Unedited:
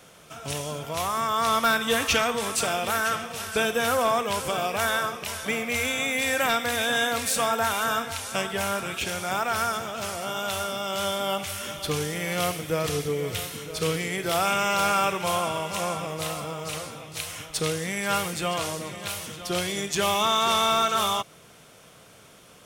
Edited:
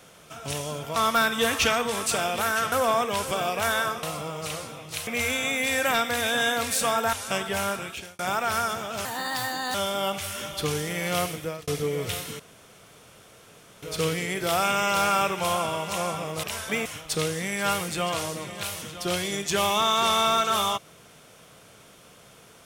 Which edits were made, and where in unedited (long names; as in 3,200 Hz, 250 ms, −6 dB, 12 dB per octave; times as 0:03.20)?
0:00.96–0:01.45: remove
0:03.21–0:03.89: remove
0:05.20–0:05.62: swap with 0:16.26–0:17.30
0:07.68–0:08.17: remove
0:08.73–0:09.23: fade out
0:10.09–0:11.00: play speed 131%
0:12.57–0:12.93: fade out
0:13.65: splice in room tone 1.43 s